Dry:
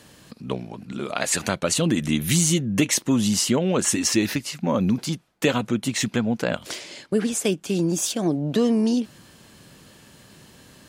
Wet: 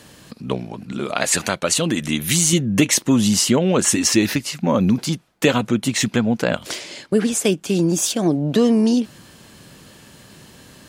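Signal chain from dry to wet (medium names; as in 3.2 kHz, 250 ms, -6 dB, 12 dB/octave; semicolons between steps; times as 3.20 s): 1.41–2.53 s: bass shelf 370 Hz -6.5 dB; trim +4.5 dB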